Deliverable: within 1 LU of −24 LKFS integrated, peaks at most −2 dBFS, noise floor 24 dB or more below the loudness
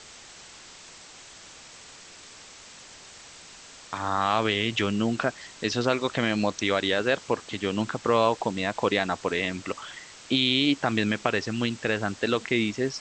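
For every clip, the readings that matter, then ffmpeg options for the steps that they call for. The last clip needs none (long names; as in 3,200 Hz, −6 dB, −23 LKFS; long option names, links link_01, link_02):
background noise floor −48 dBFS; target noise floor −50 dBFS; integrated loudness −26.0 LKFS; sample peak −5.0 dBFS; target loudness −24.0 LKFS
→ -af "afftdn=noise_reduction=6:noise_floor=-48"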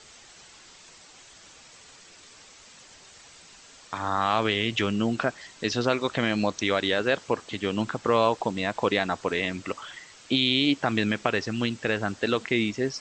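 background noise floor −51 dBFS; integrated loudness −26.0 LKFS; sample peak −5.0 dBFS; target loudness −24.0 LKFS
→ -af "volume=2dB"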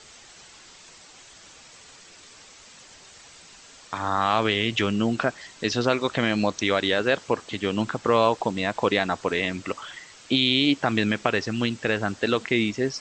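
integrated loudness −24.0 LKFS; sample peak −3.0 dBFS; background noise floor −49 dBFS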